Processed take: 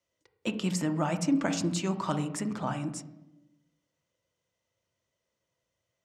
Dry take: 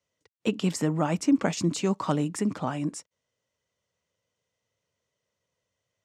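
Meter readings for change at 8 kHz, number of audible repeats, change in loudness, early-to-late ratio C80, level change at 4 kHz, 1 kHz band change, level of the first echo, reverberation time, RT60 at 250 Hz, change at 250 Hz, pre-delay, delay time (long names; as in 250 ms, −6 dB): −1.5 dB, no echo audible, −3.5 dB, 17.5 dB, −1.5 dB, −2.0 dB, no echo audible, 0.95 s, 1.2 s, −3.5 dB, 3 ms, no echo audible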